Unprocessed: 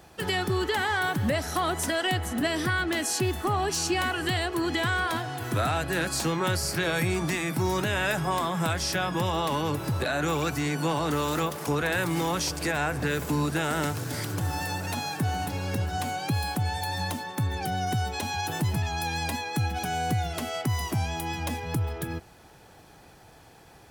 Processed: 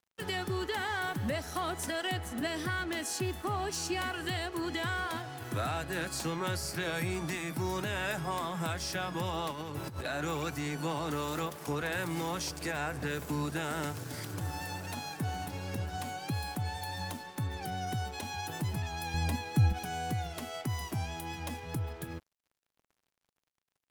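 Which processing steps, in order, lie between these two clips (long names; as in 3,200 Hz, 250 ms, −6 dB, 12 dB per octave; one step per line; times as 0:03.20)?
0:09.51–0:10.06: compressor whose output falls as the input rises −30 dBFS, ratio −0.5
0:19.14–0:19.73: low-shelf EQ 240 Hz +12 dB
dead-zone distortion −45 dBFS
level −6.5 dB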